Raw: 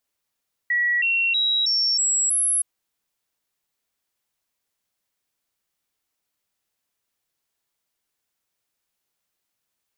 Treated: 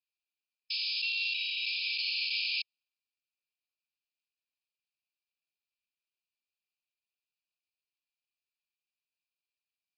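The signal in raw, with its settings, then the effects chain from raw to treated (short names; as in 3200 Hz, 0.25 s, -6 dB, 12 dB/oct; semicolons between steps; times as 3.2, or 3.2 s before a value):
stepped sine 1930 Hz up, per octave 2, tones 6, 0.32 s, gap 0.00 s -18 dBFS
sample-rate reducer 3400 Hz, jitter 20%; brick-wall FIR band-pass 2300–5200 Hz; mismatched tape noise reduction decoder only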